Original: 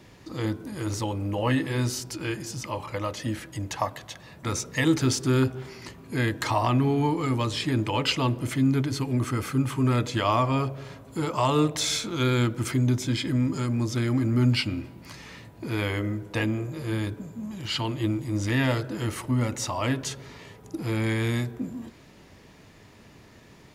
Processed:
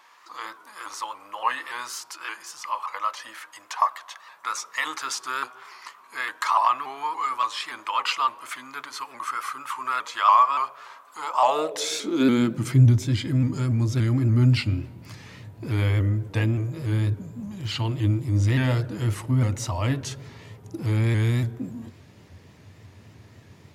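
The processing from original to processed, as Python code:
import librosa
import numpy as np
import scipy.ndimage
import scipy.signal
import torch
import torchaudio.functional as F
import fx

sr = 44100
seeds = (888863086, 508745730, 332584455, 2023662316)

y = fx.filter_sweep_highpass(x, sr, from_hz=1100.0, to_hz=94.0, start_s=11.18, end_s=12.98, q=4.4)
y = fx.vibrato_shape(y, sr, shape='saw_up', rate_hz=3.5, depth_cents=100.0)
y = y * librosa.db_to_amplitude(-2.0)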